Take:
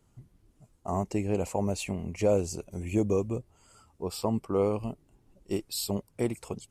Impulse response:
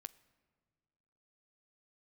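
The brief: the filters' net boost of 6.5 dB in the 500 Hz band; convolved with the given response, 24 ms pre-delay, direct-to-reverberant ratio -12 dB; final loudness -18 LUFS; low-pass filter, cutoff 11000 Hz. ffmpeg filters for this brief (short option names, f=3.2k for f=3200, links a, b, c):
-filter_complex "[0:a]lowpass=11k,equalizer=f=500:t=o:g=7.5,asplit=2[a][b];[1:a]atrim=start_sample=2205,adelay=24[c];[b][c]afir=irnorm=-1:irlink=0,volume=17.5dB[d];[a][d]amix=inputs=2:normalize=0,volume=-3.5dB"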